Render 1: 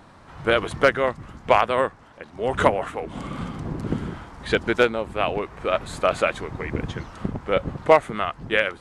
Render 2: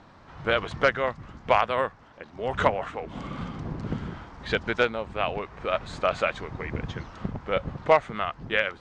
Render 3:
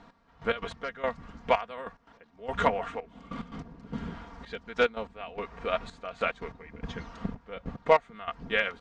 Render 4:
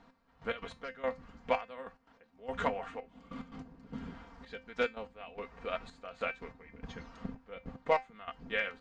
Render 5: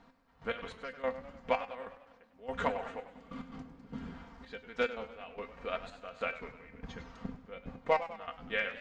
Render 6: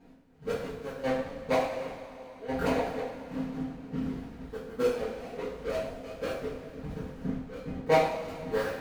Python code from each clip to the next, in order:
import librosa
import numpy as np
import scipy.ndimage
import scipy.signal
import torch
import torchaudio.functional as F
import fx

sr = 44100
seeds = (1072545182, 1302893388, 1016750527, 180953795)

y1 = scipy.signal.sosfilt(scipy.signal.butter(4, 6400.0, 'lowpass', fs=sr, output='sos'), x)
y1 = fx.dynamic_eq(y1, sr, hz=330.0, q=1.5, threshold_db=-35.0, ratio=4.0, max_db=-6)
y1 = y1 * 10.0 ** (-3.0 / 20.0)
y2 = y1 + 0.65 * np.pad(y1, (int(4.3 * sr / 1000.0), 0))[:len(y1)]
y2 = fx.step_gate(y2, sr, bpm=145, pattern='x...x.x...xxxx', floor_db=-12.0, edge_ms=4.5)
y2 = y2 * 10.0 ** (-3.5 / 20.0)
y3 = fx.comb_fb(y2, sr, f0_hz=260.0, decay_s=0.21, harmonics='all', damping=0.0, mix_pct=70)
y3 = y3 * 10.0 ** (1.0 / 20.0)
y4 = fx.echo_warbled(y3, sr, ms=100, feedback_pct=56, rate_hz=2.8, cents=112, wet_db=-13.5)
y5 = scipy.signal.medfilt(y4, 41)
y5 = fx.rev_double_slope(y5, sr, seeds[0], early_s=0.54, late_s=4.1, knee_db=-19, drr_db=-10.0)